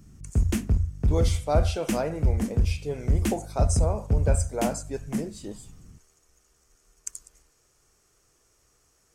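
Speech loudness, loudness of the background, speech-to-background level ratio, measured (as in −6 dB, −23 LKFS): −32.0 LKFS, −27.5 LKFS, −4.5 dB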